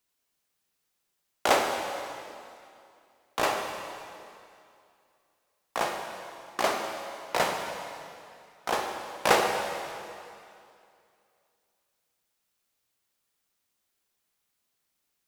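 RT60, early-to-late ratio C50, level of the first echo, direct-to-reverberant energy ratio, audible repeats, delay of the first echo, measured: 2.5 s, 3.5 dB, no echo, 2.0 dB, no echo, no echo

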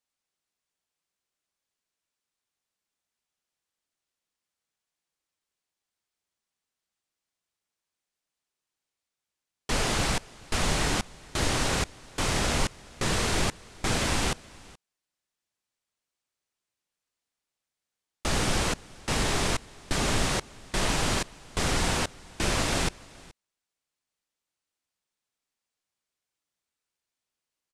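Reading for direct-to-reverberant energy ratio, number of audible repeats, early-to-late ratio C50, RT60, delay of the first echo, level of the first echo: no reverb, 1, no reverb, no reverb, 425 ms, -23.0 dB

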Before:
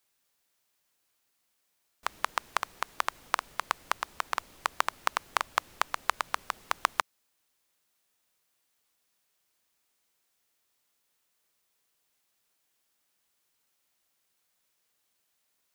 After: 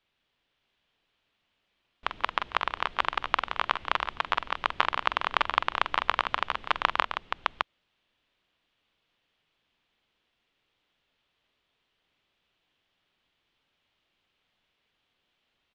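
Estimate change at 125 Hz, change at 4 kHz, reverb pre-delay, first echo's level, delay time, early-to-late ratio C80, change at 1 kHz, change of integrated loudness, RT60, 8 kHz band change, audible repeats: no reading, +6.5 dB, no reverb, -9.5 dB, 45 ms, no reverb, +4.0 dB, +4.0 dB, no reverb, under -10 dB, 4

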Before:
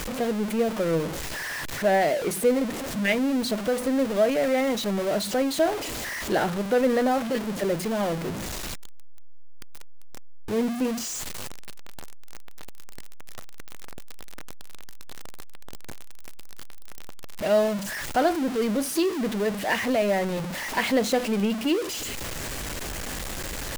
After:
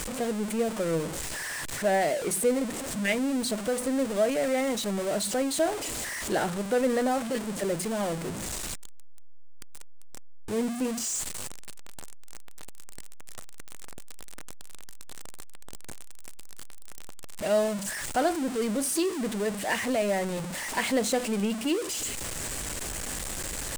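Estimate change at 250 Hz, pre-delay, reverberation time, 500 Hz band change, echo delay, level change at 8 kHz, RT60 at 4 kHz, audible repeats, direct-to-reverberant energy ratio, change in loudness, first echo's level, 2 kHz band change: -3.5 dB, no reverb, no reverb, -3.5 dB, no echo, +3.0 dB, no reverb, no echo, no reverb, -3.0 dB, no echo, -3.5 dB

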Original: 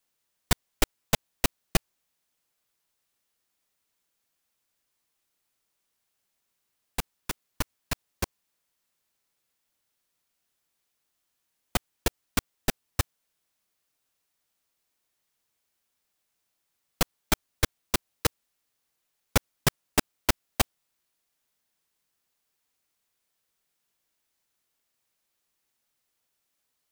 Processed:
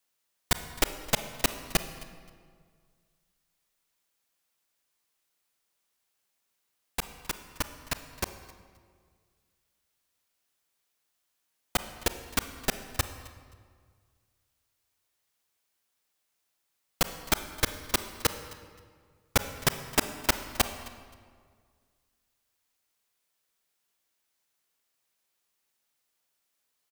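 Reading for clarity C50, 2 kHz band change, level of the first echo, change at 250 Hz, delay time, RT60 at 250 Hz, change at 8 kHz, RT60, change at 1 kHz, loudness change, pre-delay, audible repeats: 10.5 dB, +0.5 dB, -22.0 dB, -3.0 dB, 263 ms, 2.0 s, 0.0 dB, 1.8 s, 0.0 dB, -0.5 dB, 30 ms, 2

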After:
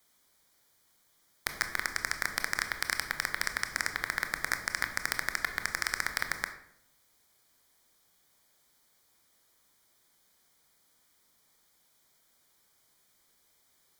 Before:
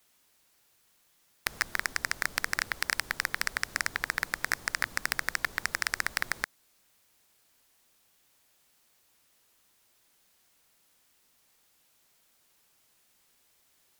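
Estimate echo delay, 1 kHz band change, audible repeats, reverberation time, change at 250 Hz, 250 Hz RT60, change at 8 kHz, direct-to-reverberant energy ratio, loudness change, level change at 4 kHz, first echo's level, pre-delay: no echo, -0.5 dB, no echo, 0.70 s, -0.5 dB, 0.90 s, -1.0 dB, 7.0 dB, -1.0 dB, -1.0 dB, no echo, 20 ms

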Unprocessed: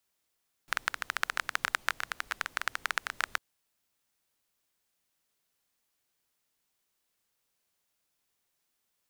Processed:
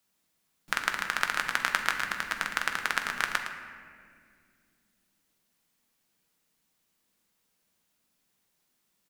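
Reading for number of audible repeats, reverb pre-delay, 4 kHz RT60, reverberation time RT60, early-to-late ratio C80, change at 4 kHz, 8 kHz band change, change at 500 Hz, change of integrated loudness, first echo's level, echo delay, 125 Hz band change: 1, 6 ms, 1.2 s, 2.1 s, 6.0 dB, +4.0 dB, +4.0 dB, +5.0 dB, +4.0 dB, -10.0 dB, 111 ms, no reading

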